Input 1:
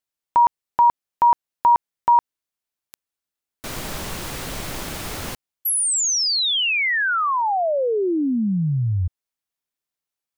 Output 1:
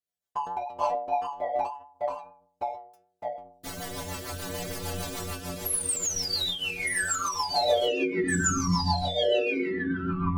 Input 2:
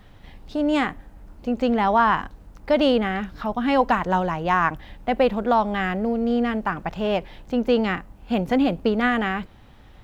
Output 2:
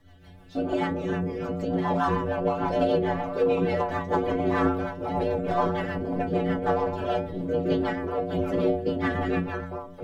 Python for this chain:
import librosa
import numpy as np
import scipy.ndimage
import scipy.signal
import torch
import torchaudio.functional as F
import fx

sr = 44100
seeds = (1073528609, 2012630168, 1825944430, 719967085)

p1 = fx.graphic_eq_31(x, sr, hz=(100, 630, 2500), db=(-8, 7, -6))
p2 = fx.echo_pitch(p1, sr, ms=143, semitones=-3, count=2, db_per_echo=-3.0)
p3 = 10.0 ** (-21.5 / 20.0) * np.tanh(p2 / 10.0 ** (-21.5 / 20.0))
p4 = p2 + F.gain(torch.from_numpy(p3), -3.0).numpy()
p5 = fx.whisperise(p4, sr, seeds[0])
p6 = fx.stiff_resonator(p5, sr, f0_hz=87.0, decay_s=0.66, stiffness=0.008)
p7 = fx.rotary(p6, sr, hz=6.7)
p8 = fx.end_taper(p7, sr, db_per_s=100.0)
y = F.gain(torch.from_numpy(p8), 5.0).numpy()